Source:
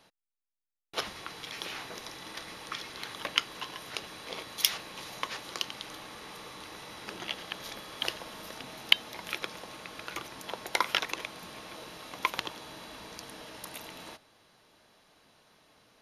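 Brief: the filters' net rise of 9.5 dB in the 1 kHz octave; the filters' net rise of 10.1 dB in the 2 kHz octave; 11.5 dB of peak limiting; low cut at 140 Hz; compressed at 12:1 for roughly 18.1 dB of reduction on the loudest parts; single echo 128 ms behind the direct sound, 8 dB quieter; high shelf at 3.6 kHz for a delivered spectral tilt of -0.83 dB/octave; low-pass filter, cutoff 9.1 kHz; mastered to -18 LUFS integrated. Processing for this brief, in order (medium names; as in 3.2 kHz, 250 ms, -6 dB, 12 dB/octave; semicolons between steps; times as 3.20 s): high-pass 140 Hz; low-pass 9.1 kHz; peaking EQ 1 kHz +8 dB; peaking EQ 2 kHz +9 dB; treble shelf 3.6 kHz +4.5 dB; compression 12:1, threshold -32 dBFS; peak limiter -24 dBFS; delay 128 ms -8 dB; trim +20 dB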